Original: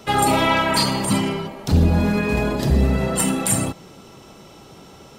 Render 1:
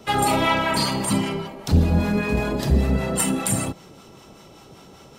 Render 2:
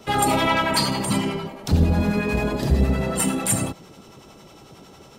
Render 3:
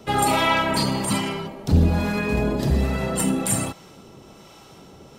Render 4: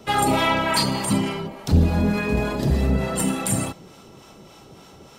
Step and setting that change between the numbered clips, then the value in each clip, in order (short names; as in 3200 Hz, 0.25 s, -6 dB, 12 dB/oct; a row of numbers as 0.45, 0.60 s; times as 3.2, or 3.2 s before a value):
harmonic tremolo, rate: 5.1, 11, 1.2, 3.4 Hz